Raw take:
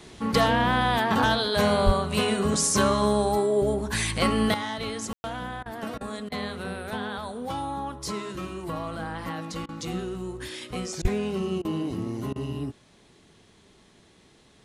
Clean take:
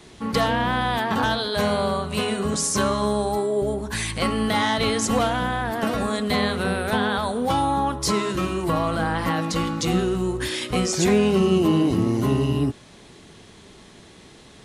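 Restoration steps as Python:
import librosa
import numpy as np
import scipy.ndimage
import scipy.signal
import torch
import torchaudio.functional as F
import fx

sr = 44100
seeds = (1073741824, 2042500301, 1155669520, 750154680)

y = fx.highpass(x, sr, hz=140.0, slope=24, at=(1.85, 1.97), fade=0.02)
y = fx.highpass(y, sr, hz=140.0, slope=24, at=(11.01, 11.13), fade=0.02)
y = fx.fix_ambience(y, sr, seeds[0], print_start_s=14.04, print_end_s=14.54, start_s=5.13, end_s=5.24)
y = fx.fix_interpolate(y, sr, at_s=(5.63, 5.98, 6.29, 9.66, 11.02, 11.62, 12.33), length_ms=27.0)
y = fx.gain(y, sr, db=fx.steps((0.0, 0.0), (4.54, 10.0)))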